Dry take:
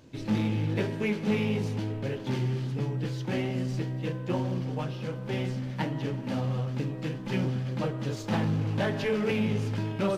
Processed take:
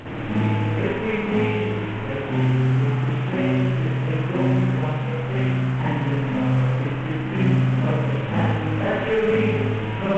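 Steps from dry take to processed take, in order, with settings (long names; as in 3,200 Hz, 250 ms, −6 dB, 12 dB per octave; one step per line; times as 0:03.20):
linear delta modulator 16 kbit/s, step −30.5 dBFS
spring reverb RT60 1 s, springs 54 ms, chirp 50 ms, DRR −8 dB
level −1.5 dB
mu-law 128 kbit/s 16,000 Hz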